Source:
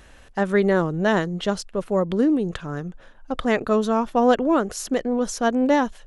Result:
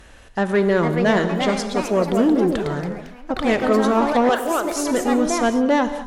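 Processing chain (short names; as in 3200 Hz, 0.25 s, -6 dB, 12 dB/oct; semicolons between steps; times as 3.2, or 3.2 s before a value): 4.29–4.72 Bessel high-pass 660 Hz, order 2; added harmonics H 5 -21 dB, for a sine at -7.5 dBFS; non-linear reverb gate 0.25 s flat, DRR 9.5 dB; echoes that change speed 0.514 s, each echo +3 st, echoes 3, each echo -6 dB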